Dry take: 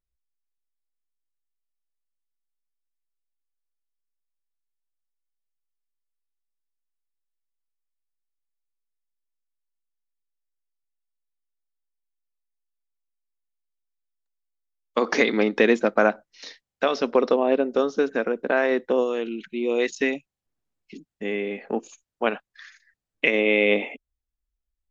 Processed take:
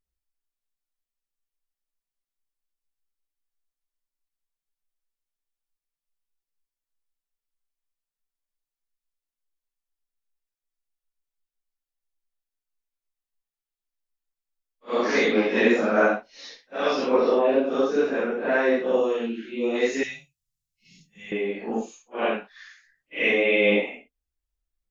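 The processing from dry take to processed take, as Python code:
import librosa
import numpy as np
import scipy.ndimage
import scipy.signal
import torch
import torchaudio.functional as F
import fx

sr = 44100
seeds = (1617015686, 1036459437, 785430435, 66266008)

y = fx.phase_scramble(x, sr, seeds[0], window_ms=200)
y = fx.curve_eq(y, sr, hz=(160.0, 310.0, 5500.0), db=(0, -30, 5), at=(20.03, 21.32))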